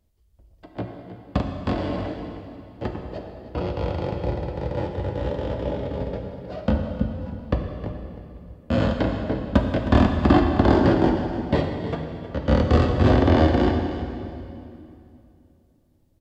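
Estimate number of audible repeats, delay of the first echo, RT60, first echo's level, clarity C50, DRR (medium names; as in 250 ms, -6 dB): 1, 314 ms, 2.7 s, -13.0 dB, 4.0 dB, 2.5 dB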